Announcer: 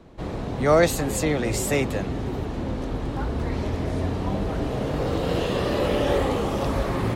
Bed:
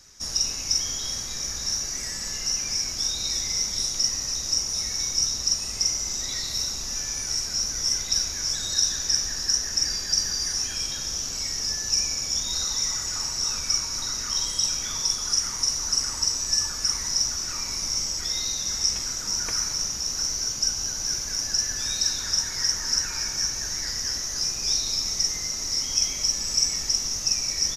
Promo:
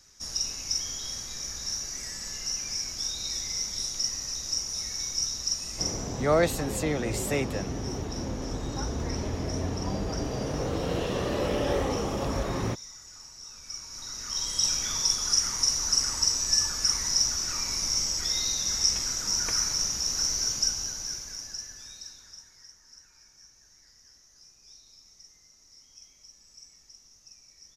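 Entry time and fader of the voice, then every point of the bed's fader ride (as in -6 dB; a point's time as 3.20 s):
5.60 s, -5.0 dB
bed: 5.79 s -5.5 dB
6.31 s -18.5 dB
13.51 s -18.5 dB
14.68 s -0.5 dB
20.55 s -0.5 dB
22.77 s -28.5 dB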